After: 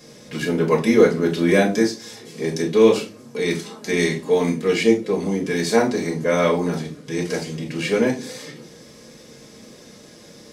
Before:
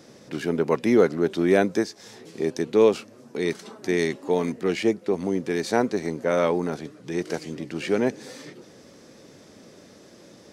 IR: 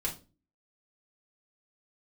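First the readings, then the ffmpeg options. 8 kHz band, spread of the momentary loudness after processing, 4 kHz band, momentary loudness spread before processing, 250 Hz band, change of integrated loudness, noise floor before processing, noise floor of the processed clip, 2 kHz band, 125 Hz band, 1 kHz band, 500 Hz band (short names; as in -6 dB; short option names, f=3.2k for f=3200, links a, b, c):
+8.0 dB, 13 LU, +7.5 dB, 15 LU, +4.5 dB, +4.0 dB, -50 dBFS, -45 dBFS, +6.0 dB, +6.5 dB, +3.0 dB, +4.0 dB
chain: -filter_complex "[0:a]highshelf=f=2.4k:g=8[a];[1:a]atrim=start_sample=2205[b];[a][b]afir=irnorm=-1:irlink=0,volume=-1dB"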